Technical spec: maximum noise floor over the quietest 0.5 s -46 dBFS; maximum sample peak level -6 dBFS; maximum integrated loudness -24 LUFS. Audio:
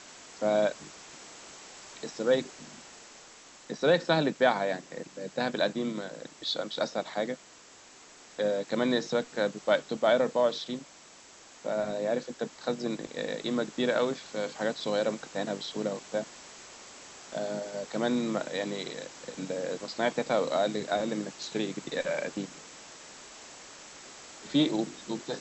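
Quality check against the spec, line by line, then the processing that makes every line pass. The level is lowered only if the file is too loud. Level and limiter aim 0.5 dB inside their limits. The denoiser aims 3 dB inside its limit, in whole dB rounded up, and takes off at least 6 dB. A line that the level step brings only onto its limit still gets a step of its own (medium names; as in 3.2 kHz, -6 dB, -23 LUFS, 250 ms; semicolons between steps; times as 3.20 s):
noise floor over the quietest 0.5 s -53 dBFS: pass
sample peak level -11.0 dBFS: pass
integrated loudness -31.0 LUFS: pass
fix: none needed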